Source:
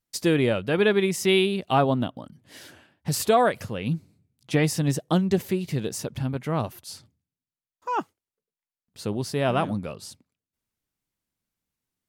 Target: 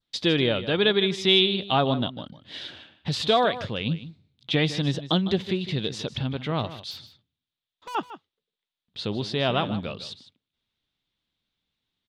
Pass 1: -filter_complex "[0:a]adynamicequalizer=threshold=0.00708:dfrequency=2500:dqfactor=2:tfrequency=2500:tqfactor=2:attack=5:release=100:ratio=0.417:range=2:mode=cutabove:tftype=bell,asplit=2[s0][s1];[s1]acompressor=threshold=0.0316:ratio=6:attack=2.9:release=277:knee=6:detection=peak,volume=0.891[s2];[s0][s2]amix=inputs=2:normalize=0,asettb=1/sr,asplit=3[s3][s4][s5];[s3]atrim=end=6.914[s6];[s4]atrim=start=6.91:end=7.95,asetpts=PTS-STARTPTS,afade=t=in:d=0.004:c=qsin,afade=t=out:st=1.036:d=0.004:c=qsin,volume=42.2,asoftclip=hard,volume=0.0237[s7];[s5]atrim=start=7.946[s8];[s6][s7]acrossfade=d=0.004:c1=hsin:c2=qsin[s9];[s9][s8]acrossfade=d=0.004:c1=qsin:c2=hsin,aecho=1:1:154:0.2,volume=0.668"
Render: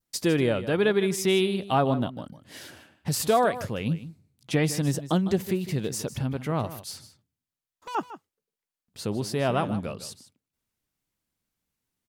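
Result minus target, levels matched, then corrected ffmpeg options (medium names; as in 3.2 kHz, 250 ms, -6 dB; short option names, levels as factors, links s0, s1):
4 kHz band -9.0 dB
-filter_complex "[0:a]adynamicequalizer=threshold=0.00708:dfrequency=2500:dqfactor=2:tfrequency=2500:tqfactor=2:attack=5:release=100:ratio=0.417:range=2:mode=cutabove:tftype=bell,lowpass=f=3600:t=q:w=5.4,asplit=2[s0][s1];[s1]acompressor=threshold=0.0316:ratio=6:attack=2.9:release=277:knee=6:detection=peak,volume=0.891[s2];[s0][s2]amix=inputs=2:normalize=0,asettb=1/sr,asplit=3[s3][s4][s5];[s3]atrim=end=6.914[s6];[s4]atrim=start=6.91:end=7.95,asetpts=PTS-STARTPTS,afade=t=in:d=0.004:c=qsin,afade=t=out:st=1.036:d=0.004:c=qsin,volume=42.2,asoftclip=hard,volume=0.0237[s7];[s5]atrim=start=7.946[s8];[s6][s7]acrossfade=d=0.004:c1=hsin:c2=qsin[s9];[s9][s8]acrossfade=d=0.004:c1=qsin:c2=hsin,aecho=1:1:154:0.2,volume=0.668"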